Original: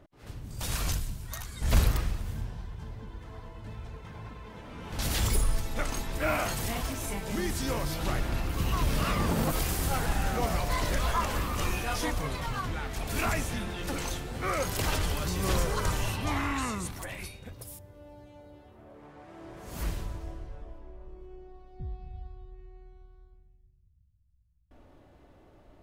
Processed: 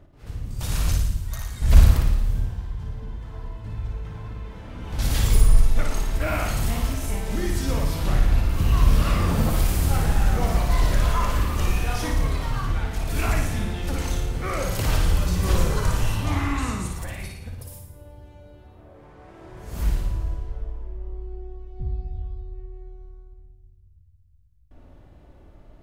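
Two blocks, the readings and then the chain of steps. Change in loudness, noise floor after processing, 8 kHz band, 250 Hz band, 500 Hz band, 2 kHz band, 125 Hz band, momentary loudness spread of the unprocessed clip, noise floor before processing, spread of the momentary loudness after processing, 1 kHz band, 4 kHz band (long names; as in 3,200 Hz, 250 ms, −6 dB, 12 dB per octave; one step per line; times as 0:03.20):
+6.5 dB, −51 dBFS, +2.0 dB, +5.0 dB, +2.5 dB, +2.0 dB, +9.5 dB, 19 LU, −59 dBFS, 17 LU, +2.0 dB, +2.0 dB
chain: low-shelf EQ 150 Hz +10 dB
flutter between parallel walls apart 9.7 metres, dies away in 0.75 s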